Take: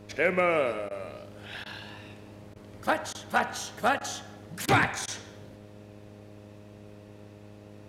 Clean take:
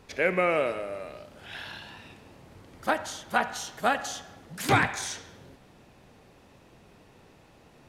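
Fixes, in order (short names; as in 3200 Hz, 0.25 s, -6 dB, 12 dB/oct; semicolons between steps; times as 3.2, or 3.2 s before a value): clip repair -13 dBFS; de-hum 103.4 Hz, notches 6; interpolate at 0.89/1.64/2.54/3.13/3.99/4.66/5.06, 17 ms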